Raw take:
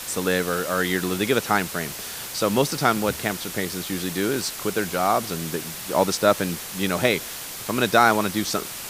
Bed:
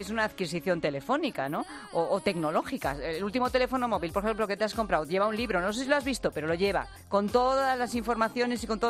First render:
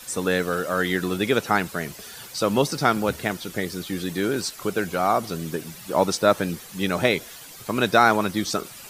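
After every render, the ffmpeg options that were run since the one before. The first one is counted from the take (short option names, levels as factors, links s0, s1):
-af "afftdn=nr=11:nf=-35"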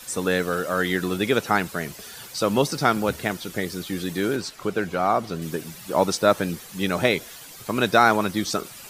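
-filter_complex "[0:a]asettb=1/sr,asplit=3[s0][s1][s2];[s0]atrim=end=4.364[s3];[s1]atrim=start=4.36:end=5.42,asetpts=PTS-STARTPTS,afade=t=in:d=0.004:c=qsin,afade=t=out:st=1.056:d=0.004:c=qsin,highshelf=f=6200:g=-11.5[s4];[s2]atrim=start=5.416[s5];[s3][s4]acrossfade=d=0.004:c1=hsin:c2=qsin[s6];[s6][s5]acrossfade=d=0.004:c1=qsin:c2=hsin"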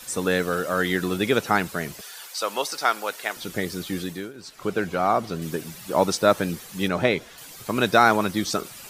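-filter_complex "[0:a]asettb=1/sr,asplit=3[s0][s1][s2];[s0]atrim=end=2.014[s3];[s1]atrim=start=2.01:end=3.37,asetpts=PTS-STARTPTS,afade=t=in:d=0.004:c=qsin,afade=t=out:st=1.356:d=0.004:c=qsin,highpass=680[s4];[s2]atrim=start=3.366[s5];[s3][s4]acrossfade=d=0.004:c1=hsin:c2=qsin[s6];[s6][s5]acrossfade=d=0.004:c1=qsin:c2=hsin,asettb=1/sr,asplit=3[s7][s8][s9];[s7]atrim=end=6.884[s10];[s8]atrim=start=6.88:end=7.38,asetpts=PTS-STARTPTS,afade=t=in:d=0.004:c=qsin,afade=t=out:st=0.496:d=0.004:c=qsin,aemphasis=mode=reproduction:type=50kf[s11];[s9]atrim=start=7.376[s12];[s10][s11]acrossfade=d=0.004:c1=hsin:c2=qsin[s13];[s13][s12]acrossfade=d=0.004:c1=qsin:c2=hsin,asplit=3[s14][s15][s16];[s14]atrim=end=4.33,asetpts=PTS-STARTPTS,afade=t=out:st=3.97:d=0.36:silence=0.0891251[s17];[s15]atrim=start=4.33:end=4.34,asetpts=PTS-STARTPTS,volume=0.0891[s18];[s16]atrim=start=4.34,asetpts=PTS-STARTPTS,afade=t=in:d=0.36:silence=0.0891251[s19];[s17][s18][s19]concat=n=3:v=0:a=1"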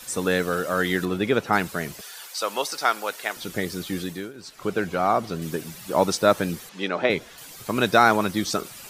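-filter_complex "[0:a]asettb=1/sr,asplit=3[s0][s1][s2];[s0]atrim=end=1.054[s3];[s1]atrim=start=1.05:end=1.53,asetpts=PTS-STARTPTS,afade=t=in:d=0.004:c=qsin,afade=t=out:st=0.476:d=0.004:c=qsin,highshelf=f=4200:g=-11[s4];[s2]atrim=start=1.526[s5];[s3][s4]acrossfade=d=0.004:c1=hsin:c2=qsin[s6];[s6][s5]acrossfade=d=0.004:c1=qsin:c2=hsin,asettb=1/sr,asplit=3[s7][s8][s9];[s7]atrim=end=6.694[s10];[s8]atrim=start=6.69:end=7.1,asetpts=PTS-STARTPTS,afade=t=in:d=0.004:c=qsin,afade=t=out:st=0.406:d=0.004:c=qsin,highpass=300,lowpass=4500[s11];[s9]atrim=start=7.096[s12];[s10][s11]acrossfade=d=0.004:c1=hsin:c2=qsin[s13];[s13][s12]acrossfade=d=0.004:c1=qsin:c2=hsin"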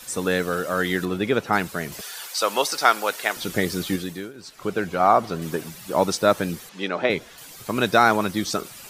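-filter_complex "[0:a]asettb=1/sr,asplit=3[s0][s1][s2];[s0]atrim=end=5.004[s3];[s1]atrim=start=5:end=5.69,asetpts=PTS-STARTPTS,afade=t=in:d=0.004:c=qsin,afade=t=out:st=0.686:d=0.004:c=qsin,equalizer=f=930:w=0.69:g=5.5[s4];[s2]atrim=start=5.686[s5];[s3][s4]acrossfade=d=0.004:c1=hsin:c2=qsin[s6];[s6][s5]acrossfade=d=0.004:c1=qsin:c2=hsin,asplit=3[s7][s8][s9];[s7]atrim=end=1.922[s10];[s8]atrim=start=1.918:end=3.962,asetpts=PTS-STARTPTS,volume=1.68[s11];[s9]atrim=start=3.958[s12];[s10][s11]acrossfade=d=0.004:c1=hsin:c2=hsin[s13];[s13][s12]acrossfade=d=0.004:c1=hsin:c2=hsin"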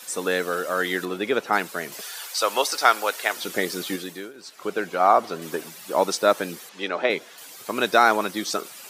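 -af "highpass=310"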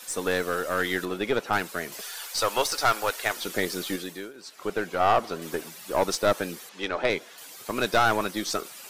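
-af "aeval=exprs='(tanh(5.01*val(0)+0.45)-tanh(0.45))/5.01':c=same"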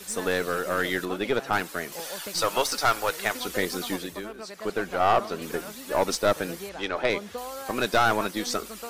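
-filter_complex "[1:a]volume=0.251[s0];[0:a][s0]amix=inputs=2:normalize=0"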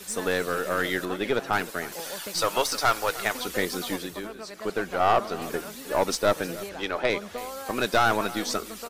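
-af "aecho=1:1:310:0.133"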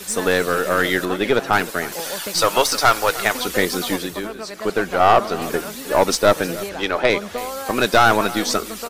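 -af "volume=2.51,alimiter=limit=0.708:level=0:latency=1"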